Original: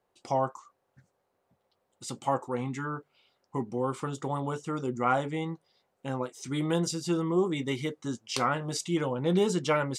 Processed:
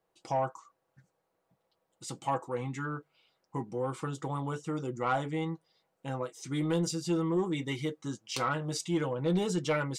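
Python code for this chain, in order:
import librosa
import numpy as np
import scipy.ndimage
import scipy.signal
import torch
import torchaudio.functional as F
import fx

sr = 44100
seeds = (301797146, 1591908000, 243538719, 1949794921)

y = x + 0.45 * np.pad(x, (int(6.2 * sr / 1000.0), 0))[:len(x)]
y = 10.0 ** (-17.0 / 20.0) * np.tanh(y / 10.0 ** (-17.0 / 20.0))
y = y * 10.0 ** (-3.0 / 20.0)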